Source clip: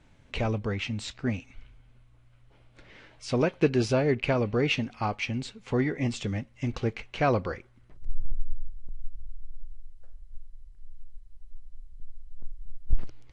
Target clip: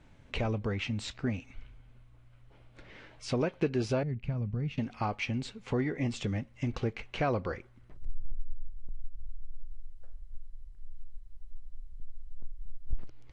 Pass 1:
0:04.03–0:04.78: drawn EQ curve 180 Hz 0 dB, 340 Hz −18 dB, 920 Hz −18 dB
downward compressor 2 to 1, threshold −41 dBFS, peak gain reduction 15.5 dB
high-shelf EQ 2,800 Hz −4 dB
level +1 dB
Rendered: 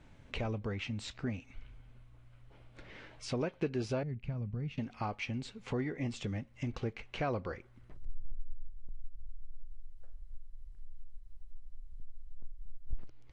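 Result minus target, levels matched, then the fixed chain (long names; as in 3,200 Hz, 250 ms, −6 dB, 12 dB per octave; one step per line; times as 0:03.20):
downward compressor: peak gain reduction +4.5 dB
0:04.03–0:04.78: drawn EQ curve 180 Hz 0 dB, 340 Hz −18 dB, 920 Hz −18 dB
downward compressor 2 to 1, threshold −31.5 dBFS, peak gain reduction 10.5 dB
high-shelf EQ 2,800 Hz −4 dB
level +1 dB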